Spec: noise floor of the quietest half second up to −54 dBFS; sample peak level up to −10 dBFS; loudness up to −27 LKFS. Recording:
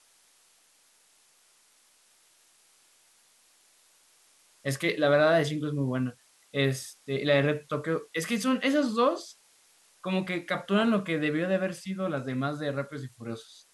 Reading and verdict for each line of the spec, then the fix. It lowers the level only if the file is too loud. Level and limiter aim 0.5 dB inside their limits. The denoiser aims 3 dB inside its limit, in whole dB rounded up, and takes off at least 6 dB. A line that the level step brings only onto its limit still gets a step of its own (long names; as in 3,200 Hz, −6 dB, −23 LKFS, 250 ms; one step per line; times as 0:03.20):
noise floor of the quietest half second −64 dBFS: in spec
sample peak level −12.0 dBFS: in spec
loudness −28.5 LKFS: in spec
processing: no processing needed